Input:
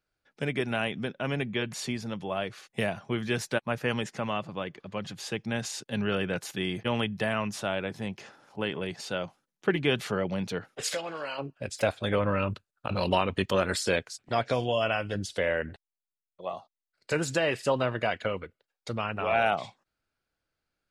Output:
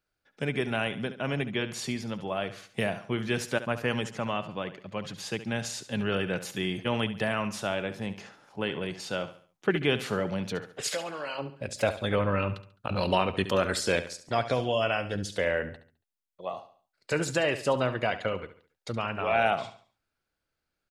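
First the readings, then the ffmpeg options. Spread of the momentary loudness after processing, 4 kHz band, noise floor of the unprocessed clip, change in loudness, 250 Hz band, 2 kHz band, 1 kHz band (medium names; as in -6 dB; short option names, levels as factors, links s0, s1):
11 LU, 0.0 dB, under -85 dBFS, +0.5 dB, 0.0 dB, 0.0 dB, +0.5 dB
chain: -af "aecho=1:1:70|140|210|280:0.224|0.0851|0.0323|0.0123"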